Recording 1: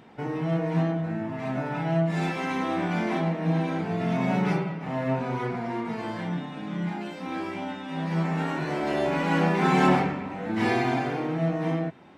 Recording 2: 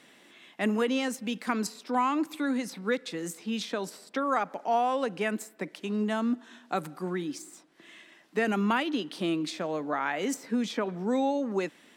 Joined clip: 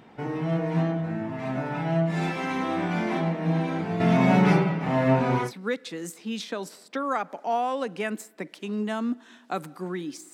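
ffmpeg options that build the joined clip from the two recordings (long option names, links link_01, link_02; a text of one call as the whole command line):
ffmpeg -i cue0.wav -i cue1.wav -filter_complex "[0:a]asettb=1/sr,asplit=3[link_01][link_02][link_03];[link_01]atrim=end=4.004[link_04];[link_02]atrim=start=4:end=5.52,asetpts=PTS-STARTPTS,afade=type=in:duration=0.004:curve=qsin,afade=type=out:start_time=1.516:duration=0.004:curve=qsin,acontrast=49[link_05];[link_03]atrim=start=5.516[link_06];[link_04][link_05]acrossfade=duration=0.004:curve1=hsin:curve2=qsin[link_07];[link_07][link_06]acrossfade=duration=0.004:curve1=qsin:curve2=hsin,apad=whole_dur=10.33,atrim=end=10.33,atrim=end=5.52,asetpts=PTS-STARTPTS[link_08];[1:a]atrim=start=2.59:end=7.54,asetpts=PTS-STARTPTS[link_09];[link_08][link_09]acrossfade=duration=0.14:curve1=tri:curve2=tri" out.wav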